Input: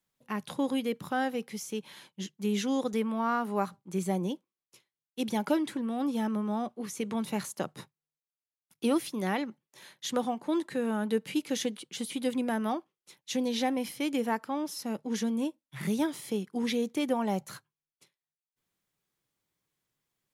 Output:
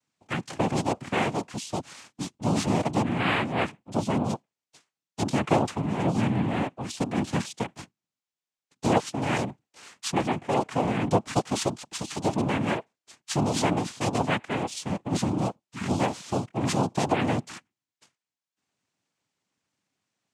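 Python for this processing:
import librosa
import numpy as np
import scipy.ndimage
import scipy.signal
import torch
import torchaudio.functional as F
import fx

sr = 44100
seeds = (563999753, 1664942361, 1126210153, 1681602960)

y = fx.noise_vocoder(x, sr, seeds[0], bands=4)
y = y * 10.0 ** (4.5 / 20.0)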